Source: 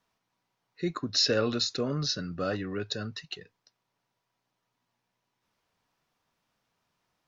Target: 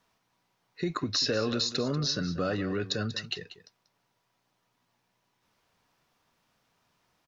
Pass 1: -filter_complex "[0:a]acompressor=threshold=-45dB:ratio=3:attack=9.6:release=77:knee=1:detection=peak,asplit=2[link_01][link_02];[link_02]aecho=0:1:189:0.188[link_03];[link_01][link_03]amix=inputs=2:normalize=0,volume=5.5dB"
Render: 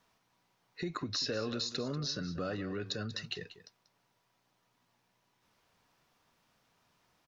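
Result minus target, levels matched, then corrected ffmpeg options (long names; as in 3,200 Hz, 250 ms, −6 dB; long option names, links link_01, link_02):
downward compressor: peak gain reduction +7 dB
-filter_complex "[0:a]acompressor=threshold=-34.5dB:ratio=3:attack=9.6:release=77:knee=1:detection=peak,asplit=2[link_01][link_02];[link_02]aecho=0:1:189:0.188[link_03];[link_01][link_03]amix=inputs=2:normalize=0,volume=5.5dB"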